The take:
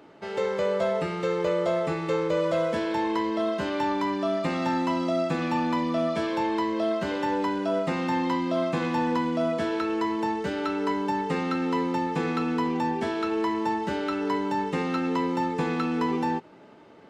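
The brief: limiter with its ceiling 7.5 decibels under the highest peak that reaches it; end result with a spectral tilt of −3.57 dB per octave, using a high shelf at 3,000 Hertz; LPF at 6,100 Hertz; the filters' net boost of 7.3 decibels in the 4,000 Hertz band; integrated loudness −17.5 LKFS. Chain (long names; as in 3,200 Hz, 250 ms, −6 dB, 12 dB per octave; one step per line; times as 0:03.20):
low-pass filter 6,100 Hz
high-shelf EQ 3,000 Hz +4 dB
parametric band 4,000 Hz +7 dB
level +12 dB
brickwall limiter −9.5 dBFS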